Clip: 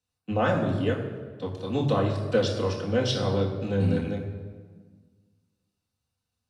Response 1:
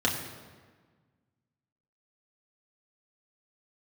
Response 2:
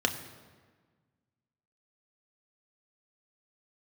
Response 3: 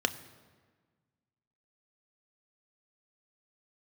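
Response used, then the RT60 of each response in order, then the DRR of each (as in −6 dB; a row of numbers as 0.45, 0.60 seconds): 1; 1.5, 1.5, 1.5 seconds; −3.0, 4.5, 9.5 decibels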